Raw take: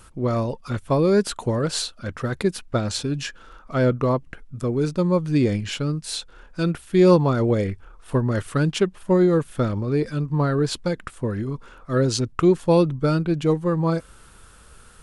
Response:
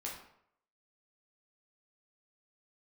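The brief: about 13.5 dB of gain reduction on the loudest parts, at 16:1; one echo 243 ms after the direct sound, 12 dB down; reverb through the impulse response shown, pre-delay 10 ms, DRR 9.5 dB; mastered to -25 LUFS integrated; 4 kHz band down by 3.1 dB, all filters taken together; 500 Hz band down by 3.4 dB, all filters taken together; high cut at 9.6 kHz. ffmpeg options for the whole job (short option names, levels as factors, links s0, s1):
-filter_complex "[0:a]lowpass=9600,equalizer=f=500:t=o:g=-4.5,equalizer=f=4000:t=o:g=-3.5,acompressor=threshold=0.0501:ratio=16,aecho=1:1:243:0.251,asplit=2[s0][s1];[1:a]atrim=start_sample=2205,adelay=10[s2];[s1][s2]afir=irnorm=-1:irlink=0,volume=0.335[s3];[s0][s3]amix=inputs=2:normalize=0,volume=2.24"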